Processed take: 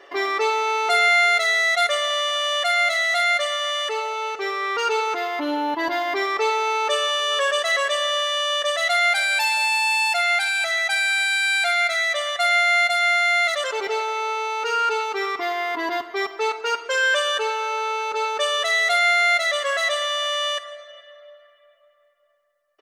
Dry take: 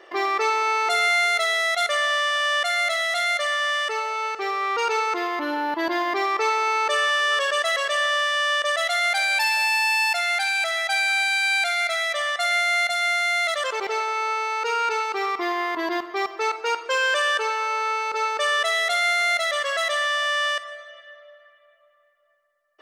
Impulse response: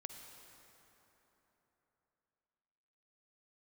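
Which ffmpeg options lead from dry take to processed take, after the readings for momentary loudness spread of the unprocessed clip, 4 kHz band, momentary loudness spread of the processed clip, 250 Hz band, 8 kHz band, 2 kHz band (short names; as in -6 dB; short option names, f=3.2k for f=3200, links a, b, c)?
6 LU, +2.5 dB, 8 LU, -0.5 dB, +1.5 dB, +1.5 dB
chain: -af "aecho=1:1:7.1:0.63"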